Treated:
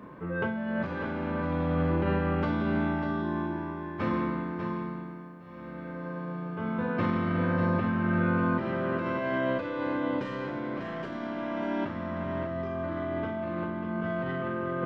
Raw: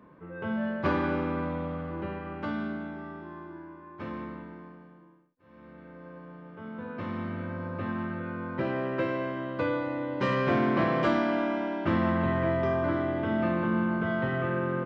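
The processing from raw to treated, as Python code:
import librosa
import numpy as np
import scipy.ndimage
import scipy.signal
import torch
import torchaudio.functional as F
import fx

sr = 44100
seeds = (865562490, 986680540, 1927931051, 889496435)

p1 = fx.tracing_dist(x, sr, depth_ms=0.026)
p2 = fx.over_compress(p1, sr, threshold_db=-35.0, ratio=-1.0)
p3 = fx.doubler(p2, sr, ms=35.0, db=-8.5)
p4 = p3 + fx.echo_single(p3, sr, ms=595, db=-7.5, dry=0)
y = p4 * 10.0 ** (3.5 / 20.0)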